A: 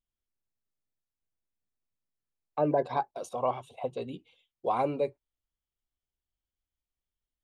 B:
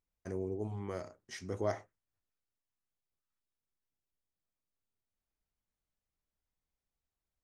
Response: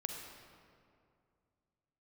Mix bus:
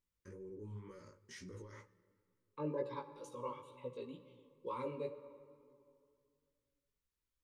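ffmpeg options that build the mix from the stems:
-filter_complex "[0:a]bandreject=f=1.5k:w=9.9,volume=-11.5dB,asplit=2[a][b];[b]volume=-4dB[c];[1:a]alimiter=level_in=18dB:limit=-24dB:level=0:latency=1:release=29,volume=-18dB,volume=0.5dB,asplit=2[d][e];[e]volume=-13dB[f];[2:a]atrim=start_sample=2205[g];[c][f]amix=inputs=2:normalize=0[h];[h][g]afir=irnorm=-1:irlink=0[i];[a][d][i]amix=inputs=3:normalize=0,flanger=delay=15.5:depth=4.6:speed=2.1,asuperstop=centerf=710:order=12:qfactor=2.5"

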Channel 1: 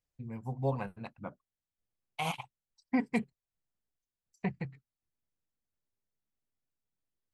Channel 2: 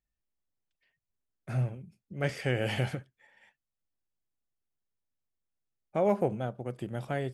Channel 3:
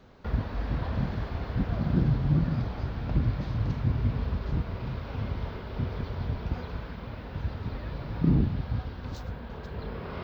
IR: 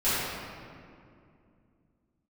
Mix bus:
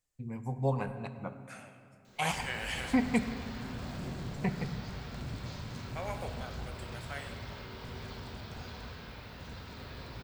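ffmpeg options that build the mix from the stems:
-filter_complex "[0:a]volume=1dB,asplit=2[a][b];[b]volume=-23dB[c];[1:a]highpass=1.2k,volume=-2dB,asplit=2[d][e];[e]volume=-19dB[f];[2:a]lowshelf=f=170:g=-6.5,volume=30dB,asoftclip=hard,volume=-30dB,crystalizer=i=6:c=0,adelay=2050,volume=-13.5dB,asplit=2[g][h];[h]volume=-11dB[i];[3:a]atrim=start_sample=2205[j];[c][f][i]amix=inputs=3:normalize=0[k];[k][j]afir=irnorm=-1:irlink=0[l];[a][d][g][l]amix=inputs=4:normalize=0,equalizer=f=7.6k:t=o:w=0.53:g=8.5"

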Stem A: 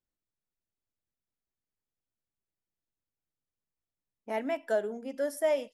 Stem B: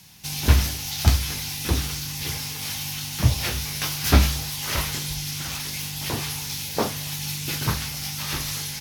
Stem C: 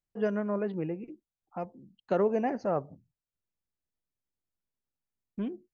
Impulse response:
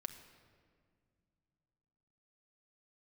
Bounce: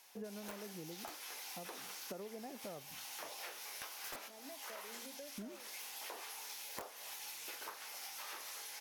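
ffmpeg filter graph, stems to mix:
-filter_complex "[0:a]acompressor=threshold=-38dB:ratio=6,volume=-10.5dB,asplit=2[a][b];[1:a]highpass=f=470:w=0.5412,highpass=f=470:w=1.3066,highshelf=f=10k:g=-7.5,aeval=exprs='(mod(5.96*val(0)+1,2)-1)/5.96':c=same,volume=-5dB[c];[2:a]volume=-5.5dB[d];[b]apad=whole_len=388131[e];[c][e]sidechaincompress=threshold=-55dB:ratio=5:attack=6:release=464[f];[a][f][d]amix=inputs=3:normalize=0,equalizer=f=4.1k:w=0.64:g=-8.5,acompressor=threshold=-44dB:ratio=12"

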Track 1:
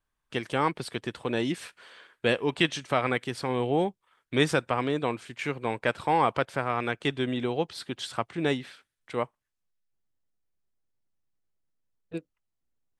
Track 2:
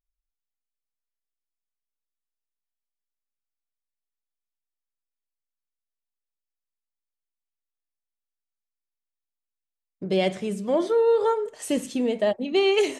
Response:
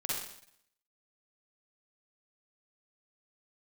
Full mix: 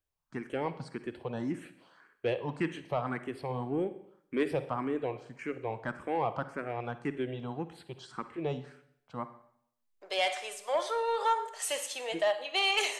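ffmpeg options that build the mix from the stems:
-filter_complex "[0:a]highshelf=f=2.1k:g=-11,bandreject=f=3.6k:w=9.5,asplit=2[a][b];[b]afreqshift=1.8[c];[a][c]amix=inputs=2:normalize=1,volume=-3.5dB,asplit=2[d][e];[e]volume=-14dB[f];[1:a]highpass=f=700:w=0.5412,highpass=f=700:w=1.3066,volume=0.5dB,asplit=2[g][h];[h]volume=-13.5dB[i];[2:a]atrim=start_sample=2205[j];[f][i]amix=inputs=2:normalize=0[k];[k][j]afir=irnorm=-1:irlink=0[l];[d][g][l]amix=inputs=3:normalize=0,asoftclip=type=tanh:threshold=-19dB"

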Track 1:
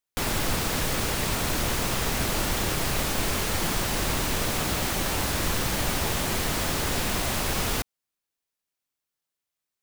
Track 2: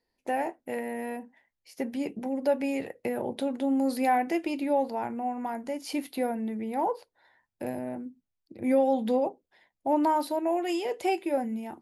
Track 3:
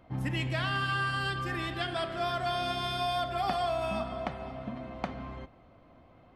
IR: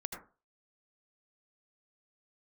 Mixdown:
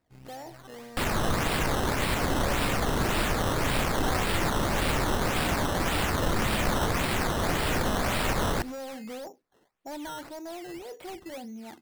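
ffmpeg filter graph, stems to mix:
-filter_complex "[0:a]adelay=800,volume=-1dB,asplit=2[a][b];[b]volume=-17dB[c];[1:a]asoftclip=type=hard:threshold=-25dB,volume=-3.5dB[d];[2:a]lowpass=f=2.2k:p=1,aeval=exprs='0.168*(cos(1*acos(clip(val(0)/0.168,-1,1)))-cos(1*PI/2))+0.0299*(cos(3*acos(clip(val(0)/0.168,-1,1)))-cos(3*PI/2))+0.0266*(cos(4*acos(clip(val(0)/0.168,-1,1)))-cos(4*PI/2))':c=same,volume=-11.5dB[e];[d][e]amix=inputs=2:normalize=0,alimiter=level_in=11.5dB:limit=-24dB:level=0:latency=1:release=15,volume=-11.5dB,volume=0dB[f];[3:a]atrim=start_sample=2205[g];[c][g]afir=irnorm=-1:irlink=0[h];[a][f][h]amix=inputs=3:normalize=0,acrusher=samples=13:mix=1:aa=0.000001:lfo=1:lforange=13:lforate=1.8"

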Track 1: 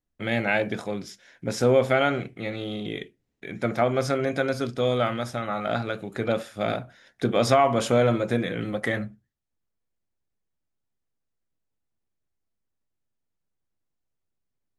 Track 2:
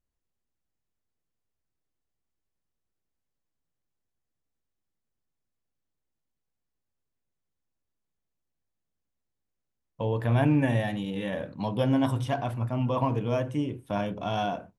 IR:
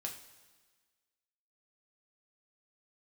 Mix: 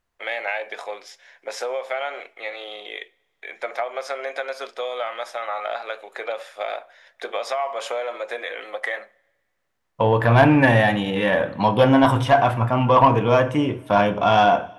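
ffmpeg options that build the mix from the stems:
-filter_complex "[0:a]highpass=f=500:w=0.5412,highpass=f=500:w=1.3066,equalizer=f=1.4k:w=3.2:g=-7.5,acompressor=threshold=-28dB:ratio=6,volume=-5dB,asplit=2[a][b];[b]volume=-16.5dB[c];[1:a]volume=3dB,asplit=2[d][e];[e]volume=-6.5dB[f];[2:a]atrim=start_sample=2205[g];[c][f]amix=inputs=2:normalize=0[h];[h][g]afir=irnorm=-1:irlink=0[i];[a][d][i]amix=inputs=3:normalize=0,equalizer=f=1.3k:w=0.39:g=12.5,asoftclip=type=tanh:threshold=-4.5dB"

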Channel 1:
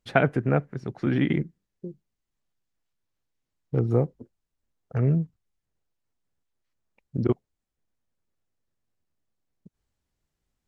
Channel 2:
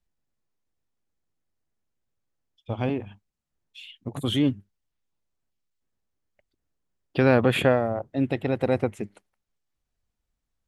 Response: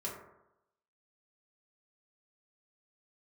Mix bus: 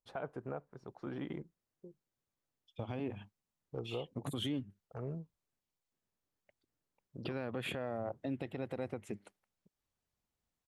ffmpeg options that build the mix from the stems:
-filter_complex "[0:a]equalizer=f=125:t=o:w=1:g=-6,equalizer=f=250:t=o:w=1:g=-4,equalizer=f=500:t=o:w=1:g=3,equalizer=f=1k:t=o:w=1:g=9,equalizer=f=2k:t=o:w=1:g=-8,volume=-15dB[a];[1:a]highpass=91,acompressor=threshold=-26dB:ratio=4,adelay=100,volume=-3.5dB[b];[a][b]amix=inputs=2:normalize=0,alimiter=level_in=4dB:limit=-24dB:level=0:latency=1:release=209,volume=-4dB"

